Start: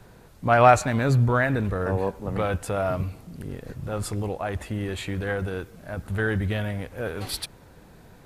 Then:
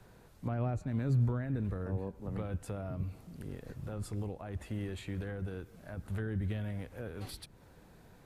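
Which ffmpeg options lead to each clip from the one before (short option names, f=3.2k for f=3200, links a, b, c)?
-filter_complex "[0:a]acrossover=split=350[a][b];[b]acompressor=threshold=-38dB:ratio=6[c];[a][c]amix=inputs=2:normalize=0,volume=-8dB"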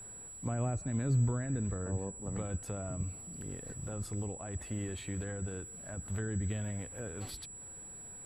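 -af "aeval=exprs='val(0)+0.00501*sin(2*PI*7800*n/s)':c=same"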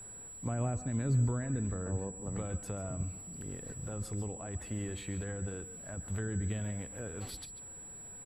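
-af "aecho=1:1:139|143:0.106|0.178"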